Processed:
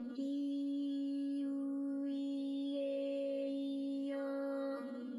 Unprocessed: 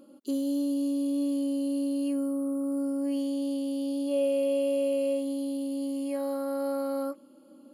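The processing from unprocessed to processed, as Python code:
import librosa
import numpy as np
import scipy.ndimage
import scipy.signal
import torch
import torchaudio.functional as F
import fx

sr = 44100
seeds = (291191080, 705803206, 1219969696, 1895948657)

y = scipy.signal.sosfilt(scipy.signal.butter(2, 3000.0, 'lowpass', fs=sr, output='sos'), x)
y = fx.stretch_vocoder_free(y, sr, factor=0.67)
y = fx.comb_fb(y, sr, f0_hz=240.0, decay_s=0.34, harmonics='all', damping=0.0, mix_pct=100)
y = y + 10.0 ** (-20.5 / 20.0) * np.pad(y, (int(218 * sr / 1000.0), 0))[:len(y)]
y = fx.env_flatten(y, sr, amount_pct=70)
y = y * 10.0 ** (12.5 / 20.0)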